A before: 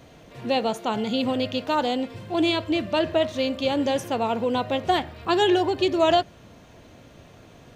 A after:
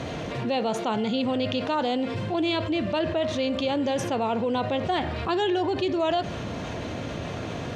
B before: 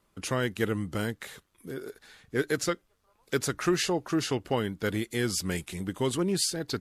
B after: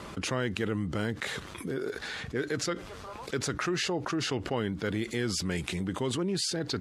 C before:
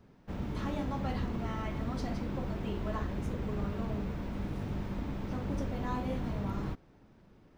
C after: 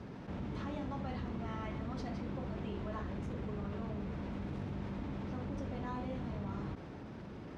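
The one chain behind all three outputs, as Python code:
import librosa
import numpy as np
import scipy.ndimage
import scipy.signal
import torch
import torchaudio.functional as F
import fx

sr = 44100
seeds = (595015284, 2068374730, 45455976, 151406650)

y = scipy.signal.sosfilt(scipy.signal.butter(2, 60.0, 'highpass', fs=sr, output='sos'), x)
y = fx.air_absorb(y, sr, metres=67.0)
y = fx.env_flatten(y, sr, amount_pct=70)
y = y * librosa.db_to_amplitude(-6.5)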